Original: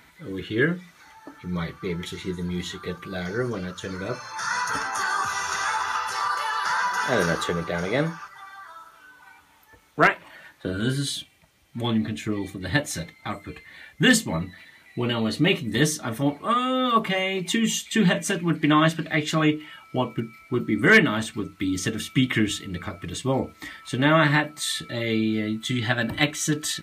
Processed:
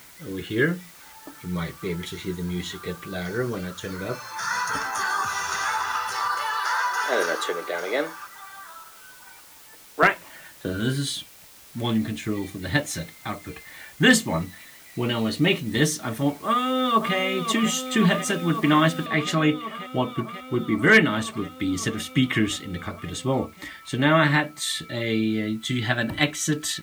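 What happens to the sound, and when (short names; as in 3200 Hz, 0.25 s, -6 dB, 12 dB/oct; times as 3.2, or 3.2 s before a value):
6.57–10.03 HPF 320 Hz 24 dB/oct
13.51–14.42 bell 840 Hz +4 dB 2 oct
16.45–17.16 echo throw 0.54 s, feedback 85%, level -8.5 dB
19.06 noise floor step -49 dB -59 dB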